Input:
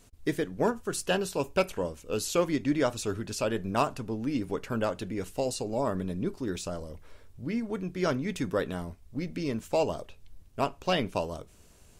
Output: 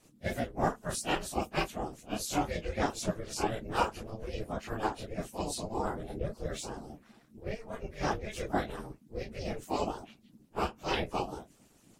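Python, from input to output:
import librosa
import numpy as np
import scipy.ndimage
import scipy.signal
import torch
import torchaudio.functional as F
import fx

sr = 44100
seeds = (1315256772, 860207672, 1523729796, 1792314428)

y = fx.phase_scramble(x, sr, seeds[0], window_ms=100)
y = y * np.sin(2.0 * np.pi * 220.0 * np.arange(len(y)) / sr)
y = fx.hpss(y, sr, part='harmonic', gain_db=-15)
y = y * 10.0 ** (3.0 / 20.0)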